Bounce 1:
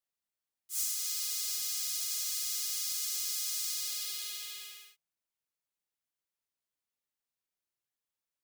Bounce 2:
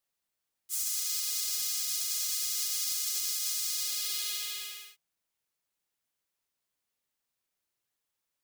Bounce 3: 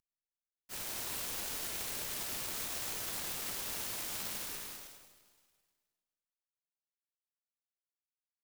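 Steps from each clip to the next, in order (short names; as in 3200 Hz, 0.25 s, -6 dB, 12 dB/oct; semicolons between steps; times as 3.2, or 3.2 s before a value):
limiter -27 dBFS, peak gain reduction 7.5 dB; gain +6 dB
CVSD 64 kbps; digital reverb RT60 1.8 s, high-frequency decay 0.9×, pre-delay 10 ms, DRR 4.5 dB; noise-modulated delay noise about 5000 Hz, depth 0.22 ms; gain -5 dB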